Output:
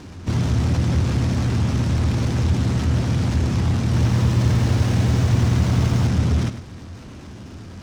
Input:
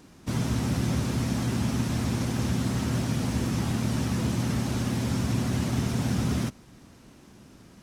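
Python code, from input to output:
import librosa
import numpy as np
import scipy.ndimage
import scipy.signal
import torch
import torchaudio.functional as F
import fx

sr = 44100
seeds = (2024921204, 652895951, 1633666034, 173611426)

y = scipy.signal.sosfilt(scipy.signal.butter(2, 6400.0, 'lowpass', fs=sr, output='sos'), x)
y = fx.peak_eq(y, sr, hz=87.0, db=14.5, octaves=0.57)
y = fx.power_curve(y, sr, exponent=0.7)
y = y + 10.0 ** (-12.0 / 20.0) * np.pad(y, (int(102 * sr / 1000.0), 0))[:len(y)]
y = fx.echo_crushed(y, sr, ms=91, feedback_pct=80, bits=8, wet_db=-6, at=(3.84, 6.07))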